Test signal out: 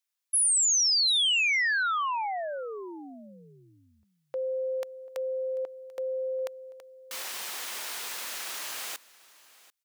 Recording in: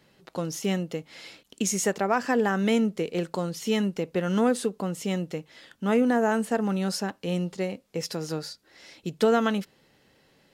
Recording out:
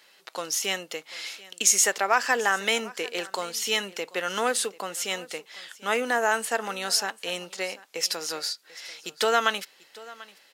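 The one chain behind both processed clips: high-pass 340 Hz 12 dB/octave; tilt shelf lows -9.5 dB, about 640 Hz; delay 740 ms -20.5 dB

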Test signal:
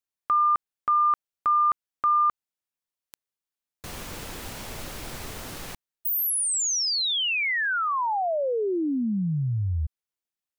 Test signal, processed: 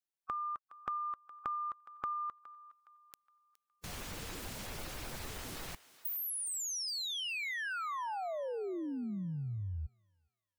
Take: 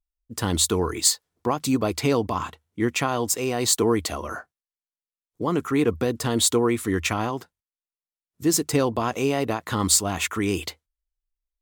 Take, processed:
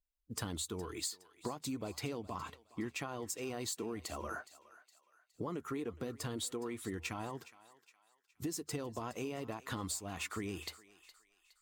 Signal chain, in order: coarse spectral quantiser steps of 15 dB; compression 12:1, threshold -31 dBFS; thinning echo 415 ms, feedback 44%, high-pass 860 Hz, level -16 dB; trim -5.5 dB

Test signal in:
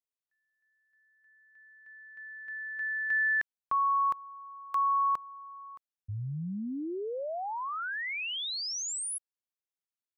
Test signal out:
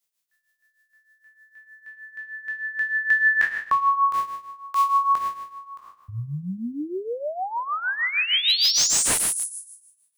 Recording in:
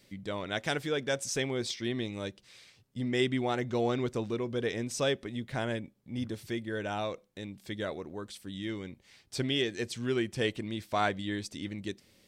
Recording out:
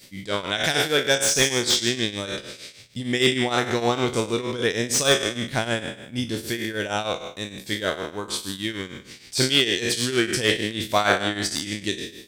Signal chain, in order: spectral sustain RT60 0.97 s; tremolo triangle 6.5 Hz, depth 80%; treble shelf 2.5 kHz +10.5 dB; slew-rate limiter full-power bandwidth 300 Hz; trim +8.5 dB

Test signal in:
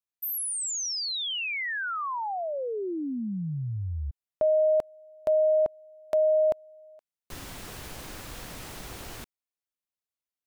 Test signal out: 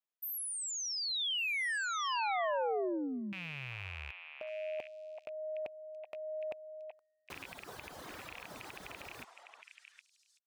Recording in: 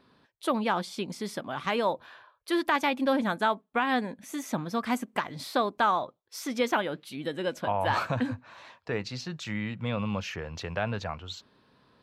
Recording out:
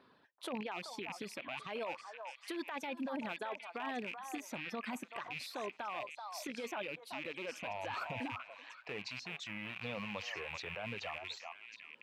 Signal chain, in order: rattle on loud lows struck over -41 dBFS, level -20 dBFS; tone controls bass -8 dB, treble -8 dB; reverb removal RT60 1.4 s; dynamic bell 1.3 kHz, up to -5 dB, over -40 dBFS, Q 1.3; compressor with a negative ratio -33 dBFS, ratio -1; high-pass 58 Hz; peak limiter -28.5 dBFS; repeats whose band climbs or falls 382 ms, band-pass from 920 Hz, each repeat 1.4 oct, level -3 dB; trim -3 dB

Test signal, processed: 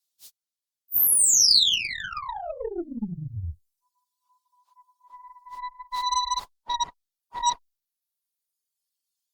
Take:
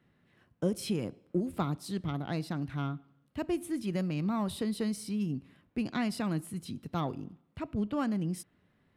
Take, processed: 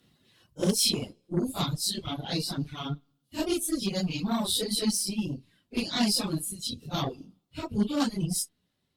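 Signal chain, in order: phase randomisation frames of 100 ms; Chebyshev shaper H 3 -38 dB, 6 -33 dB, 8 -22 dB, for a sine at -18 dBFS; resonant high shelf 2.8 kHz +12 dB, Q 1.5; reverb removal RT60 1.9 s; trim +4 dB; Opus 128 kbps 48 kHz

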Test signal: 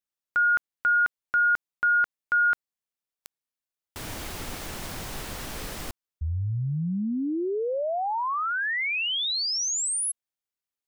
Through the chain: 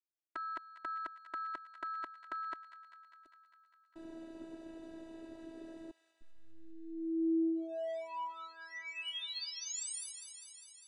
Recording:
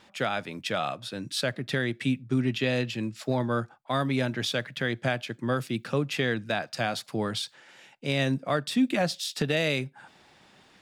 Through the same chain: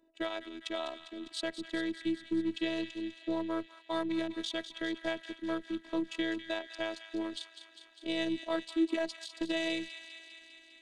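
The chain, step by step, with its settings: local Wiener filter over 41 samples; cabinet simulation 240–8900 Hz, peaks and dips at 650 Hz -5 dB, 1.4 kHz -10 dB, 2.4 kHz -7 dB, 5.3 kHz -7 dB; on a send: feedback echo behind a high-pass 201 ms, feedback 72%, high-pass 1.6 kHz, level -9.5 dB; on the sum: robot voice 327 Hz

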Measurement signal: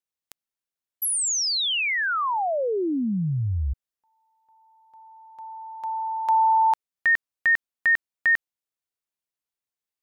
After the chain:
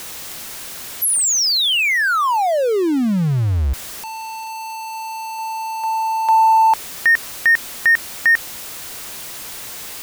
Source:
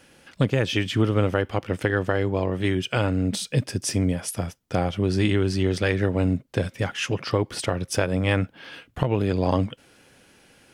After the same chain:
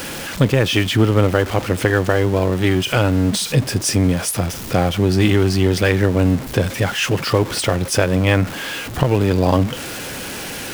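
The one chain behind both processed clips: jump at every zero crossing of -29 dBFS; trim +5.5 dB

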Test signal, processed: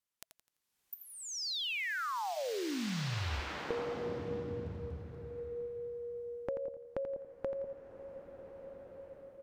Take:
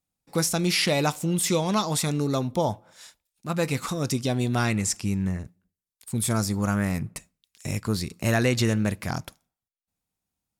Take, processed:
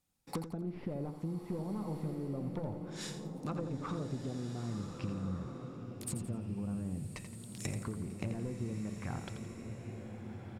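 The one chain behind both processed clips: one-sided wavefolder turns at -20 dBFS; low-pass that closes with the level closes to 560 Hz, closed at -22 dBFS; band-stop 650 Hz, Q 12; compression 10:1, threshold -39 dBFS; feedback delay 85 ms, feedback 36%, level -9.5 dB; swelling reverb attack 1650 ms, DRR 5 dB; trim +3 dB

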